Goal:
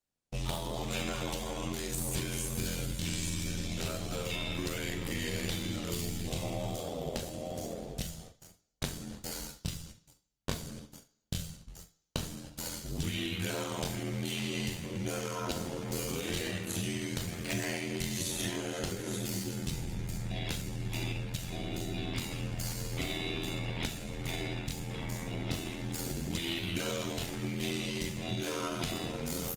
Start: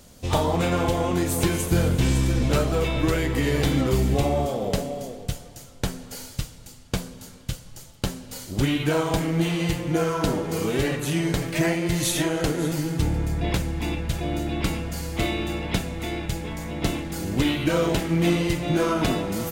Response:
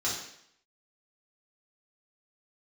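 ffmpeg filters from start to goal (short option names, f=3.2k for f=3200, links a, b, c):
-filter_complex "[0:a]bandreject=f=60:t=h:w=6,bandreject=f=120:t=h:w=6,bandreject=f=180:t=h:w=6,bandreject=f=240:t=h:w=6,bandreject=f=300:t=h:w=6,bandreject=f=360:t=h:w=6,bandreject=f=420:t=h:w=6,agate=range=-38dB:threshold=-39dB:ratio=16:detection=peak,adynamicequalizer=threshold=0.0126:dfrequency=110:dqfactor=0.98:tfrequency=110:tqfactor=0.98:attack=5:release=100:ratio=0.375:range=3:mode=boostabove:tftype=bell,acrossover=split=2500[a][b];[a]acompressor=threshold=-32dB:ratio=6[c];[b]alimiter=level_in=0.5dB:limit=-24dB:level=0:latency=1:release=199,volume=-0.5dB[d];[c][d]amix=inputs=2:normalize=0,atempo=0.66,aeval=exprs='val(0)*sin(2*PI*42*n/s)':c=same,aecho=1:1:42|69:0.2|0.126,asplit=2[e][f];[1:a]atrim=start_sample=2205,lowshelf=f=340:g=-8[g];[f][g]afir=irnorm=-1:irlink=0,volume=-19.5dB[h];[e][h]amix=inputs=2:normalize=0" -ar 48000 -c:a libopus -b:a 32k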